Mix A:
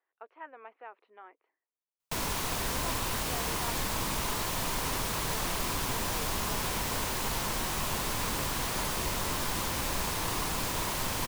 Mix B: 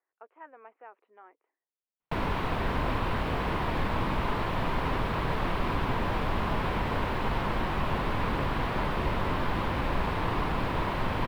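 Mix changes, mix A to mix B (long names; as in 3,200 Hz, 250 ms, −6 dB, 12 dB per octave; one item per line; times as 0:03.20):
background +6.5 dB
master: add high-frequency loss of the air 480 metres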